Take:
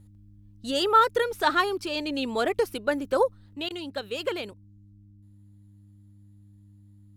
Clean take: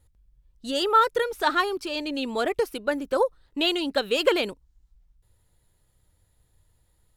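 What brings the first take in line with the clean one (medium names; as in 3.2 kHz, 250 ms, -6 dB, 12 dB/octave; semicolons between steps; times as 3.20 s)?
de-hum 101.2 Hz, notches 3; interpolate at 3.69 s, 14 ms; gain correction +8.5 dB, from 3.54 s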